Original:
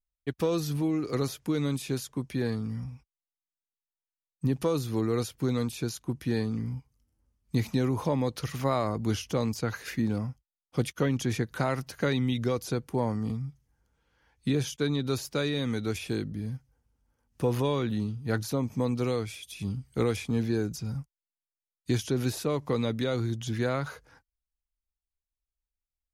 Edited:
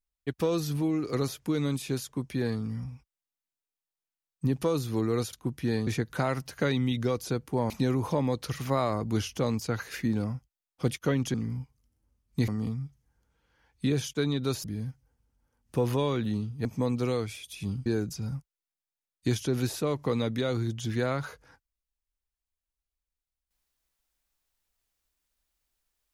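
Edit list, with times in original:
5.33–5.96 cut
6.5–7.64 swap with 11.28–13.11
15.27–16.3 cut
18.31–18.64 cut
19.85–20.49 cut

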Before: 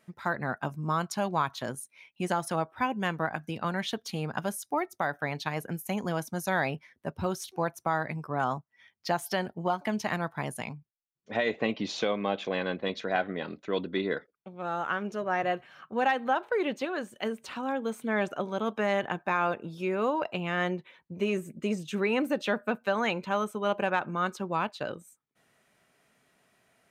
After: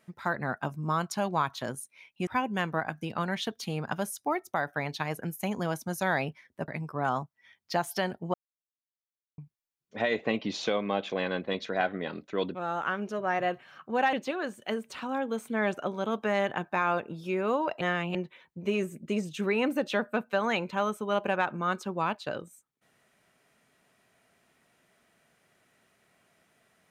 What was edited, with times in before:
2.27–2.73 cut
7.14–8.03 cut
9.69–10.73 mute
13.9–14.58 cut
16.16–16.67 cut
20.35–20.69 reverse

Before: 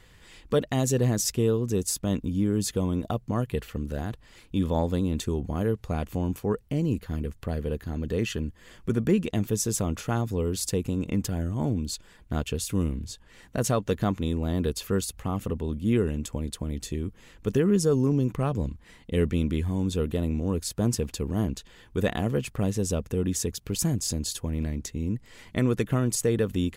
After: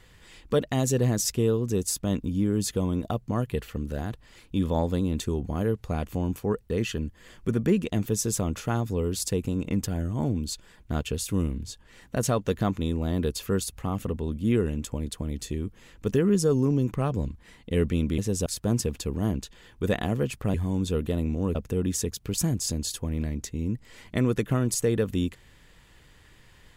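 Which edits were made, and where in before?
6.7–8.11 cut
19.59–20.6 swap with 22.68–22.96

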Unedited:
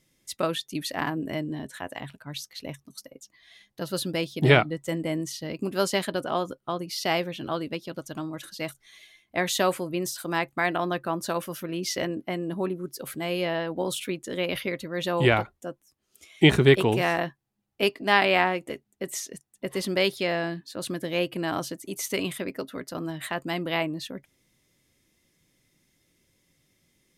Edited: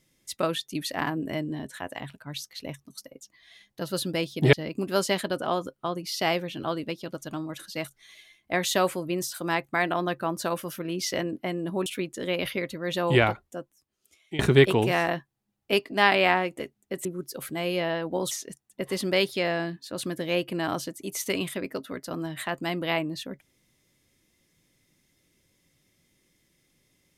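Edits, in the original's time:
4.53–5.37 cut
12.7–13.96 move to 19.15
15.58–16.49 fade out linear, to -21.5 dB

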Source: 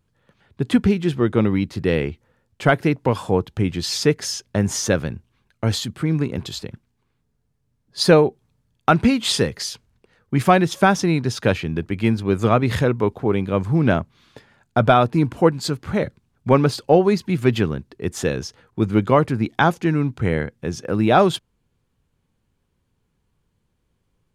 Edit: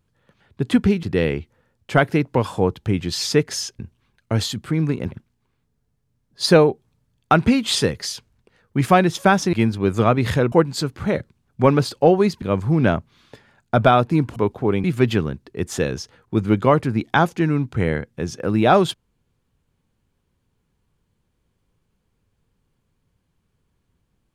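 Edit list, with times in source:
1.03–1.74 cut
4.5–5.11 cut
6.44–6.69 cut
11.1–11.98 cut
12.97–13.45 swap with 15.39–17.29

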